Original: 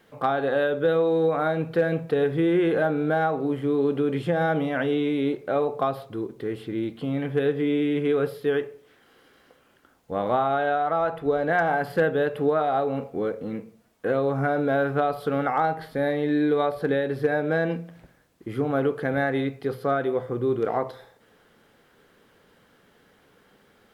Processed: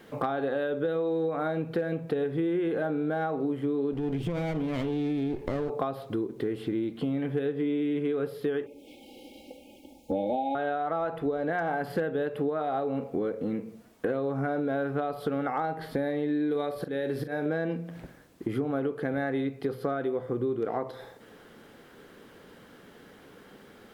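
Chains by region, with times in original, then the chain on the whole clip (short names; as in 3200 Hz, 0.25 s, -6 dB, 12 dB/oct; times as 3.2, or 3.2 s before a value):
3.93–5.7 minimum comb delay 0.34 ms + low shelf 120 Hz +11.5 dB + compressor 4:1, threshold -25 dBFS
8.66–10.55 brick-wall FIR band-stop 890–2100 Hz + comb 3.6 ms, depth 99%
16.51–17.46 high shelf 3600 Hz +7.5 dB + auto swell 0.375 s + doubler 41 ms -11 dB
whole clip: bell 290 Hz +5 dB 1.4 oct; compressor 5:1, threshold -33 dBFS; gain +5 dB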